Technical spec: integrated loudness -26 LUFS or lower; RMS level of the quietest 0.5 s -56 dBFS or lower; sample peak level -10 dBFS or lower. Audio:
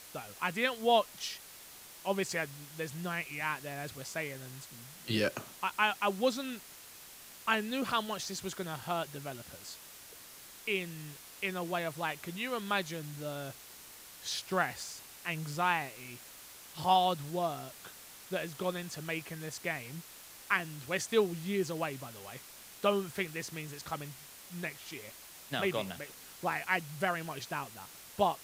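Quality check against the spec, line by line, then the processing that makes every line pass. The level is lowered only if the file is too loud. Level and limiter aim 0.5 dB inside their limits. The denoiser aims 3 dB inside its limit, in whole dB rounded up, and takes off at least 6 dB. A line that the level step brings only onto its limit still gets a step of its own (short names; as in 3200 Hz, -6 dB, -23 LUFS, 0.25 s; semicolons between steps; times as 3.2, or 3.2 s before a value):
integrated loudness -35.0 LUFS: OK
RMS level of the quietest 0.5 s -52 dBFS: fail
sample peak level -13.5 dBFS: OK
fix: denoiser 7 dB, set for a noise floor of -52 dBFS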